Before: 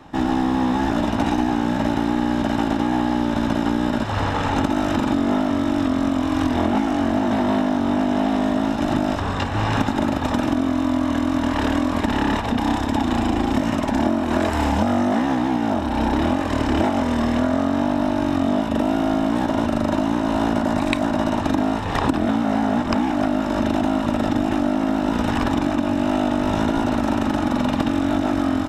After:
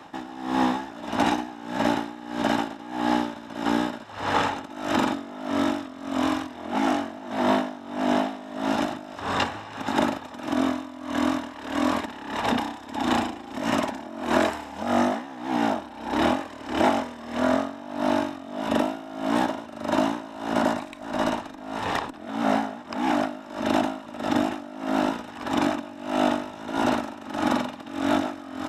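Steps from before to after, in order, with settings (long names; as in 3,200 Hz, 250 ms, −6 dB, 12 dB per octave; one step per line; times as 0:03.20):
high-pass filter 440 Hz 6 dB per octave
0:20.86–0:22.20: tube saturation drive 11 dB, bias 0.45
tremolo with a sine in dB 1.6 Hz, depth 19 dB
level +3.5 dB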